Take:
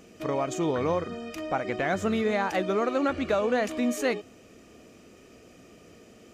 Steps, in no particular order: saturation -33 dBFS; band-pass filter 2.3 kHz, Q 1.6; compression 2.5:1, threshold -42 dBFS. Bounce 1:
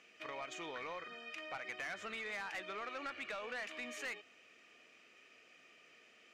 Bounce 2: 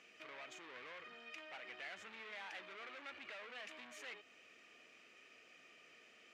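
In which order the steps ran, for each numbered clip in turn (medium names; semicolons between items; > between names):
band-pass filter > saturation > compression; saturation > compression > band-pass filter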